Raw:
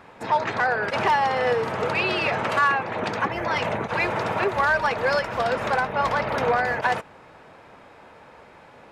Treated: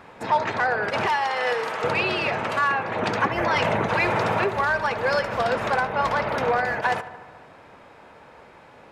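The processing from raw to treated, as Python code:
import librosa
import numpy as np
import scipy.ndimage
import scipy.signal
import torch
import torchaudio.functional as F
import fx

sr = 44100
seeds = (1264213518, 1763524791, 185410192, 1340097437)

y = fx.highpass(x, sr, hz=1100.0, slope=6, at=(1.06, 1.84))
y = fx.rider(y, sr, range_db=10, speed_s=0.5)
y = fx.echo_filtered(y, sr, ms=73, feedback_pct=72, hz=3500.0, wet_db=-15)
y = fx.env_flatten(y, sr, amount_pct=50, at=(3.38, 4.46))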